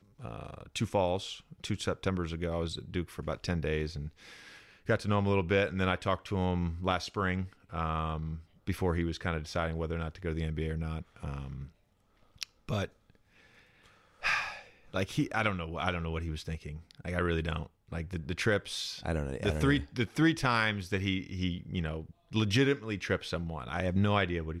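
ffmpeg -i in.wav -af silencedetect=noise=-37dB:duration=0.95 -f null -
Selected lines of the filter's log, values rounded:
silence_start: 12.85
silence_end: 14.23 | silence_duration: 1.38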